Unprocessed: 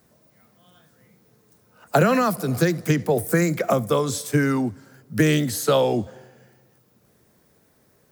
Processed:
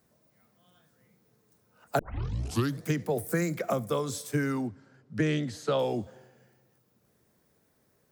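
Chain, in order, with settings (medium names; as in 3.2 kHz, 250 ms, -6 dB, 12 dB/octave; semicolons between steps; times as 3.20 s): 1.99 s: tape start 0.86 s; 4.67–5.79 s: distance through air 100 m; trim -8.5 dB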